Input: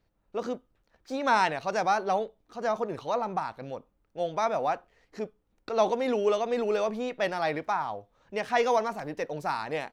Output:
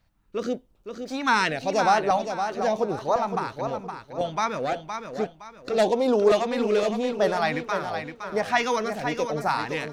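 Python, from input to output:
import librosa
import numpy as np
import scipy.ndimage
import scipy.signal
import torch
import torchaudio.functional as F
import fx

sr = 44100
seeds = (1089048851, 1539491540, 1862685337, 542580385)

y = fx.self_delay(x, sr, depth_ms=0.12, at=(4.57, 7.12))
y = fx.filter_lfo_notch(y, sr, shape='saw_up', hz=0.95, low_hz=360.0, high_hz=3100.0, q=0.88)
y = fx.echo_feedback(y, sr, ms=515, feedback_pct=31, wet_db=-7.5)
y = F.gain(torch.from_numpy(y), 6.5).numpy()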